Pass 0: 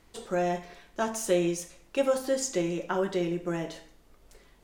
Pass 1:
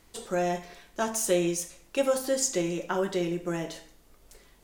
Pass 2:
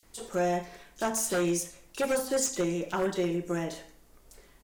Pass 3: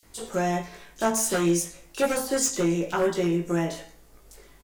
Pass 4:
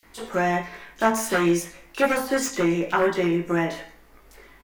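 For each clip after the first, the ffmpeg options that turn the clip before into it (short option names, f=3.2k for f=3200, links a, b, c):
-af "highshelf=f=5.3k:g=8"
-filter_complex "[0:a]aeval=exprs='0.0891*(abs(mod(val(0)/0.0891+3,4)-2)-1)':c=same,acrossover=split=3400[a][b];[a]adelay=30[c];[c][b]amix=inputs=2:normalize=0"
-filter_complex "[0:a]asplit=2[a][b];[b]adelay=18,volume=-4dB[c];[a][c]amix=inputs=2:normalize=0,volume=3dB"
-af "equalizer=f=125:t=o:w=1:g=-4,equalizer=f=250:t=o:w=1:g=4,equalizer=f=1k:t=o:w=1:g=5,equalizer=f=2k:t=o:w=1:g=8,equalizer=f=8k:t=o:w=1:g=-7"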